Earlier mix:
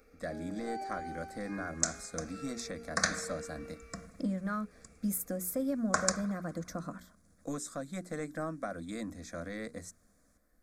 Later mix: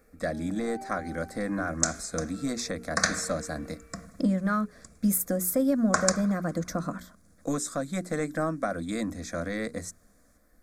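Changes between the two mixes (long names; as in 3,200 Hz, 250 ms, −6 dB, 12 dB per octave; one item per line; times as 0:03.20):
speech +8.5 dB
first sound: add high-frequency loss of the air 360 metres
second sound +4.5 dB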